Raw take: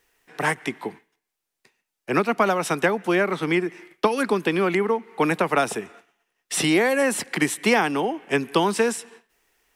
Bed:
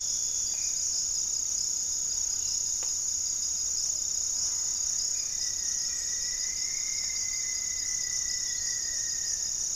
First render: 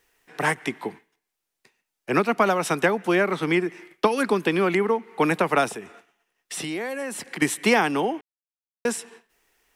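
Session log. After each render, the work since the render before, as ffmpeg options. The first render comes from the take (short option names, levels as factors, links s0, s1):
-filter_complex "[0:a]asettb=1/sr,asplit=3[s0][s1][s2];[s0]atrim=end=5.684[s3];[s1]atrim=start=5.68:end=7.42,asetpts=PTS-STARTPTS,afade=t=in:d=0.004:c=qsin,afade=t=out:st=1.736:d=0.004:c=qsin,acompressor=threshold=0.0178:ratio=2:attack=3.2:release=140:knee=1:detection=peak[s4];[s2]atrim=start=7.416[s5];[s3][s4]acrossfade=d=0.004:c1=hsin:c2=qsin[s6];[s6][s5]acrossfade=d=0.004:c1=qsin:c2=hsin,asplit=3[s7][s8][s9];[s7]atrim=end=8.21,asetpts=PTS-STARTPTS,afade=t=out:st=8.206:d=0.004:c=hsin[s10];[s8]atrim=start=8.21:end=8.85,asetpts=PTS-STARTPTS,volume=0[s11];[s9]atrim=start=8.85,asetpts=PTS-STARTPTS,afade=t=in:d=0.004:c=hsin[s12];[s10][s11][s12]concat=n=3:v=0:a=1"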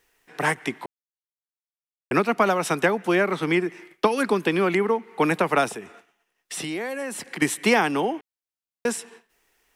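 -filter_complex "[0:a]asplit=3[s0][s1][s2];[s0]atrim=end=0.86,asetpts=PTS-STARTPTS,afade=t=out:st=0.856:d=0.004:c=hsin[s3];[s1]atrim=start=0.86:end=2.11,asetpts=PTS-STARTPTS,volume=0[s4];[s2]atrim=start=2.11,asetpts=PTS-STARTPTS,afade=t=in:d=0.004:c=hsin[s5];[s3][s4][s5]concat=n=3:v=0:a=1"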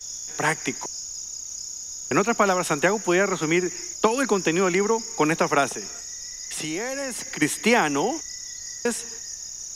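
-filter_complex "[1:a]volume=0.562[s0];[0:a][s0]amix=inputs=2:normalize=0"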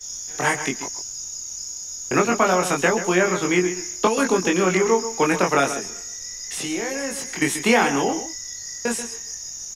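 -filter_complex "[0:a]asplit=2[s0][s1];[s1]adelay=22,volume=0.75[s2];[s0][s2]amix=inputs=2:normalize=0,asplit=2[s3][s4];[s4]adelay=134.1,volume=0.282,highshelf=f=4000:g=-3.02[s5];[s3][s5]amix=inputs=2:normalize=0"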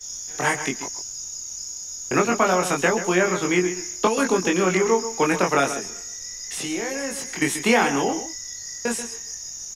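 -af "volume=0.891"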